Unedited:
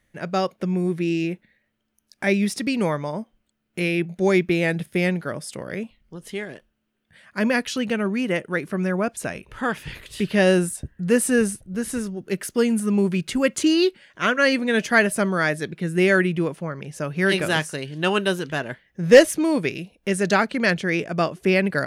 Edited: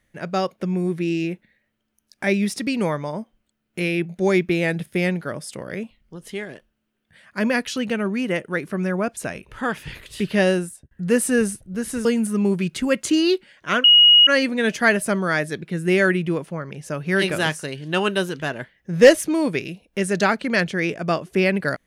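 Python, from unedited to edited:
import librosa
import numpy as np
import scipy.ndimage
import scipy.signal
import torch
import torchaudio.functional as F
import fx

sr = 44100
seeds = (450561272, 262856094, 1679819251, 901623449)

y = fx.edit(x, sr, fx.fade_out_span(start_s=10.4, length_s=0.51),
    fx.cut(start_s=12.05, length_s=0.53),
    fx.insert_tone(at_s=14.37, length_s=0.43, hz=2890.0, db=-8.0), tone=tone)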